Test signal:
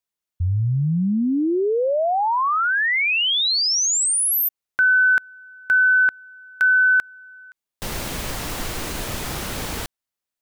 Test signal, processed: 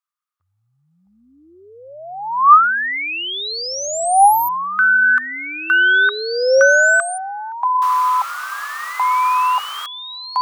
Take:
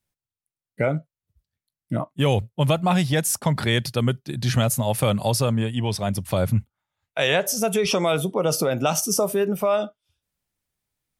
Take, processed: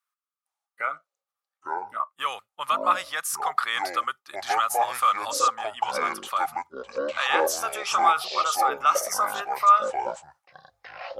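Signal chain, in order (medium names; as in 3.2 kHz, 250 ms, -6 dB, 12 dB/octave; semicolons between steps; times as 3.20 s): resonant high-pass 1.2 kHz, resonance Q 12; ever faster or slower copies 456 ms, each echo -7 st, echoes 2; trim -6 dB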